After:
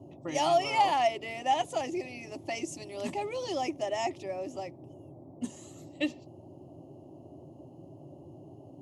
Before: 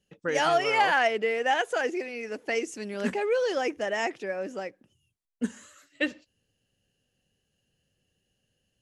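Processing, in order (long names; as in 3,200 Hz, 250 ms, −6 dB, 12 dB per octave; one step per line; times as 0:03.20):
noise in a band 72–540 Hz −46 dBFS
phaser with its sweep stopped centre 310 Hz, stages 8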